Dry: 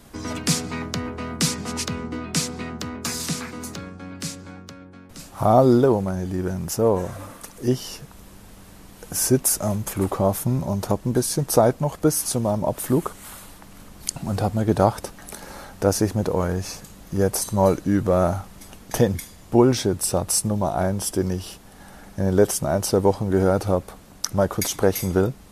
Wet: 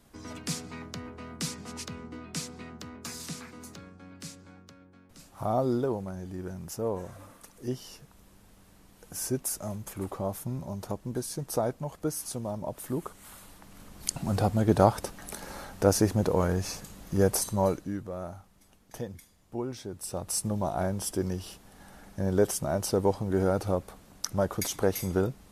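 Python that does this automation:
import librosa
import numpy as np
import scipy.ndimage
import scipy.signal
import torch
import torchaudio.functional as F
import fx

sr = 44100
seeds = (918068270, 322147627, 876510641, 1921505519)

y = fx.gain(x, sr, db=fx.line((12.93, -12.0), (14.19, -3.0), (17.34, -3.0), (17.78, -10.0), (18.1, -18.5), (19.8, -18.5), (20.49, -7.0)))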